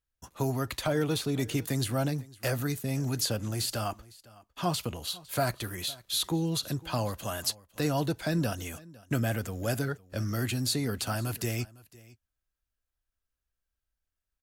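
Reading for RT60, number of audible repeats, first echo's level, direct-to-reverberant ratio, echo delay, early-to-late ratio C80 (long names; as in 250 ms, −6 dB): no reverb audible, 1, −22.0 dB, no reverb audible, 506 ms, no reverb audible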